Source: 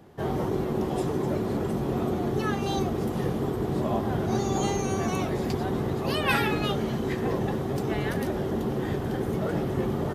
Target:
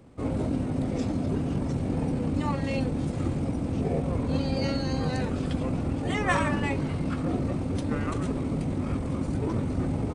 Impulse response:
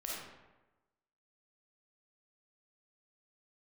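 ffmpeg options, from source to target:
-af "asetrate=30296,aresample=44100,atempo=1.45565"

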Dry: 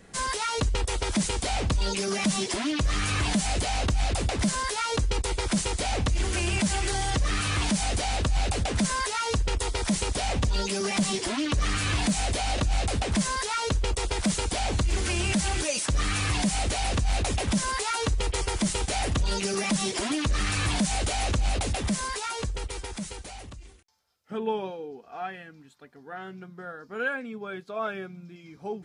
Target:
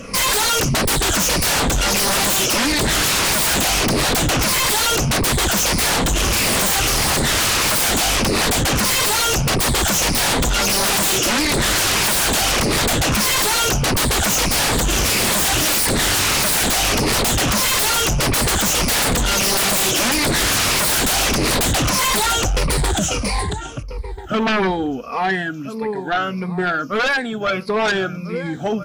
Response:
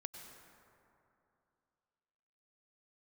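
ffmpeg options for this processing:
-filter_complex "[0:a]afftfilt=real='re*pow(10,16/40*sin(2*PI*(0.89*log(max(b,1)*sr/1024/100)/log(2)-(-1.6)*(pts-256)/sr)))':imag='im*pow(10,16/40*sin(2*PI*(0.89*log(max(b,1)*sr/1024/100)/log(2)-(-1.6)*(pts-256)/sr)))':win_size=1024:overlap=0.75,asplit=2[link_01][link_02];[link_02]adelay=1341,volume=-15dB,highshelf=frequency=4000:gain=-30.2[link_03];[link_01][link_03]amix=inputs=2:normalize=0,aeval=exprs='0.316*sin(PI/2*7.94*val(0)/0.316)':channel_layout=same,volume=-4.5dB"

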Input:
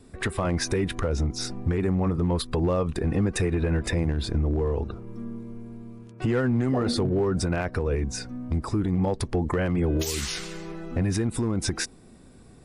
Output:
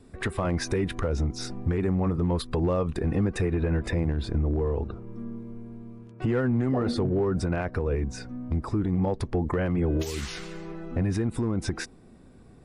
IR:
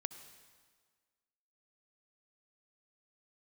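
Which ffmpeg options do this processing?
-af "asetnsamples=nb_out_samples=441:pad=0,asendcmd='3.27 highshelf g -10.5',highshelf=frequency=3700:gain=-5.5,volume=-1dB"

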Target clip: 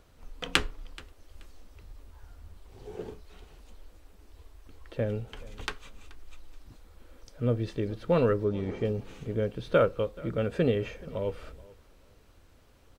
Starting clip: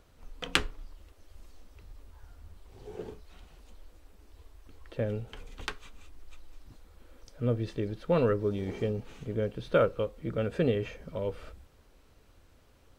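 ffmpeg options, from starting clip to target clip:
ffmpeg -i in.wav -filter_complex "[0:a]asettb=1/sr,asplit=3[link_01][link_02][link_03];[link_01]atrim=end=8.444[link_04];[link_02]atrim=start=8.44:end=8.85,asetpts=PTS-STARTPTS,afade=type=in:duration=0.004:curve=qsin,afade=type=out:start_time=0.406:duration=0.004:curve=qsin,highshelf=frequency=4900:gain=-10.5[link_05];[link_03]atrim=start=8.846[link_06];[link_04][link_05]acrossfade=duration=0.004:curve1=hsin:curve2=qsin[link_07];[link_07][link_06]acrossfade=duration=0.004:curve1=qsin:curve2=hsin,asplit=2[link_08][link_09];[link_09]aecho=0:1:429|858:0.0794|0.0175[link_10];[link_08][link_10]amix=inputs=2:normalize=0,volume=1.5dB" out.wav

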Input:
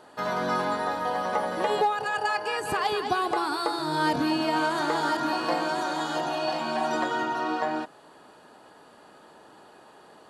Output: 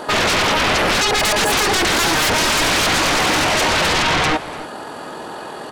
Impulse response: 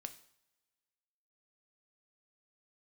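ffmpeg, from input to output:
-filter_complex "[0:a]atempo=1.8,aeval=exprs='0.211*sin(PI/2*7.94*val(0)/0.211)':channel_layout=same,asplit=2[link_01][link_02];[link_02]adelay=291.5,volume=-16dB,highshelf=frequency=4000:gain=-6.56[link_03];[link_01][link_03]amix=inputs=2:normalize=0"

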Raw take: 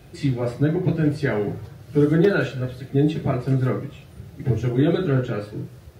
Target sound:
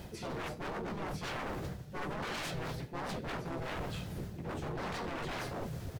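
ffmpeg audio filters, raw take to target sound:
ffmpeg -i in.wav -filter_complex "[0:a]bandreject=frequency=2200:width=11,areverse,acompressor=threshold=-30dB:ratio=20,areverse,aeval=exprs='0.0141*(abs(mod(val(0)/0.0141+3,4)-2)-1)':channel_layout=same,asplit=3[link_01][link_02][link_03];[link_02]asetrate=22050,aresample=44100,atempo=2,volume=-7dB[link_04];[link_03]asetrate=55563,aresample=44100,atempo=0.793701,volume=0dB[link_05];[link_01][link_04][link_05]amix=inputs=3:normalize=0" out.wav

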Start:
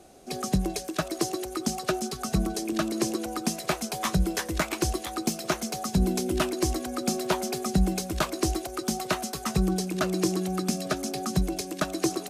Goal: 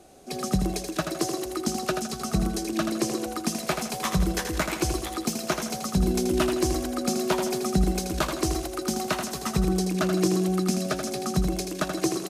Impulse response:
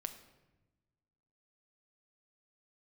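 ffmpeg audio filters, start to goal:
-af "aecho=1:1:81|162|243|324|405:0.473|0.189|0.0757|0.0303|0.0121"

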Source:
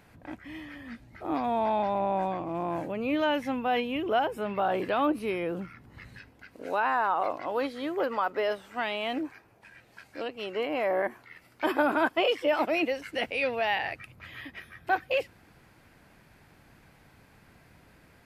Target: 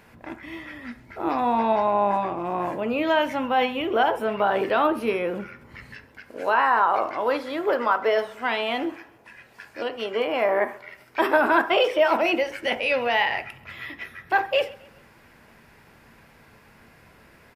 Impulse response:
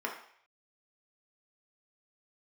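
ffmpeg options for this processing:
-filter_complex "[0:a]asetrate=45864,aresample=44100,aecho=1:1:133|266|399:0.0794|0.031|0.0121,asplit=2[link_01][link_02];[1:a]atrim=start_sample=2205,afade=type=out:start_time=0.14:duration=0.01,atrim=end_sample=6615[link_03];[link_02][link_03]afir=irnorm=-1:irlink=0,volume=-7.5dB[link_04];[link_01][link_04]amix=inputs=2:normalize=0,volume=2.5dB"

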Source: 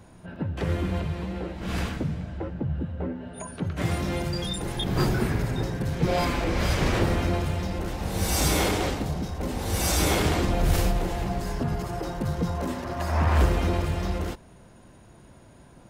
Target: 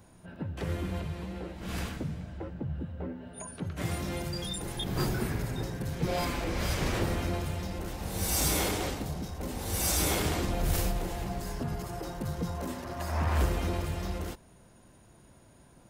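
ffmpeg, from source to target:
ffmpeg -i in.wav -af "crystalizer=i=1:c=0,volume=-6.5dB" out.wav

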